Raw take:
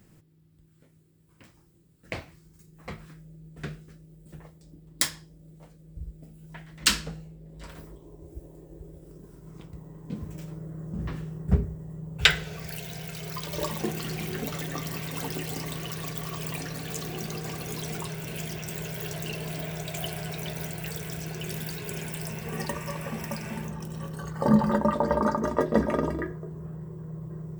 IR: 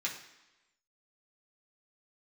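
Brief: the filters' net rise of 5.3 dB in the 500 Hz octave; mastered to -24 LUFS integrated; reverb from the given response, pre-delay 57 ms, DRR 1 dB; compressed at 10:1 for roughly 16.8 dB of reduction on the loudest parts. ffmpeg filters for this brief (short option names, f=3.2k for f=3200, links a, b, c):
-filter_complex "[0:a]equalizer=f=500:t=o:g=6.5,acompressor=threshold=-31dB:ratio=10,asplit=2[a][b];[1:a]atrim=start_sample=2205,adelay=57[c];[b][c]afir=irnorm=-1:irlink=0,volume=-4.5dB[d];[a][d]amix=inputs=2:normalize=0,volume=11dB"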